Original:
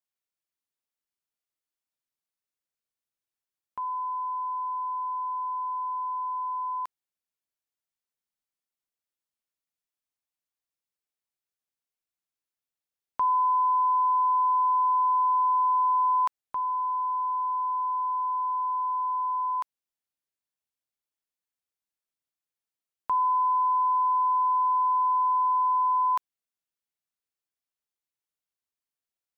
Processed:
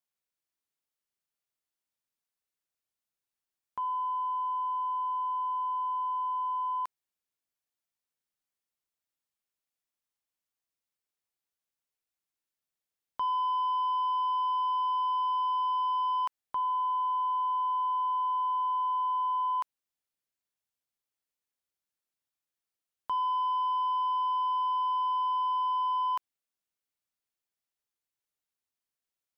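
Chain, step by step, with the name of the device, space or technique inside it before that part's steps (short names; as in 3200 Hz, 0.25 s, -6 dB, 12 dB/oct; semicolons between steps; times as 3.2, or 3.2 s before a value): soft clipper into limiter (soft clip -21.5 dBFS, distortion -19 dB; limiter -26.5 dBFS, peak gain reduction 3.5 dB)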